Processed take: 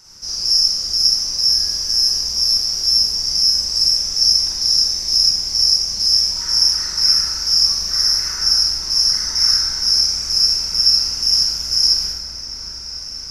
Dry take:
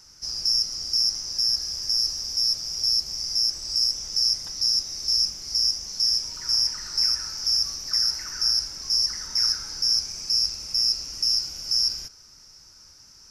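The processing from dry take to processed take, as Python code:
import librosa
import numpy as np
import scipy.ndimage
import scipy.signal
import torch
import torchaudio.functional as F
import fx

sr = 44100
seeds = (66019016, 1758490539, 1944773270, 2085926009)

y = fx.echo_opening(x, sr, ms=629, hz=750, octaves=1, feedback_pct=70, wet_db=-6)
y = fx.dmg_crackle(y, sr, seeds[0], per_s=460.0, level_db=-55.0, at=(0.79, 2.51), fade=0.02)
y = fx.rev_schroeder(y, sr, rt60_s=0.8, comb_ms=33, drr_db=-4.0)
y = F.gain(torch.from_numpy(y), 3.0).numpy()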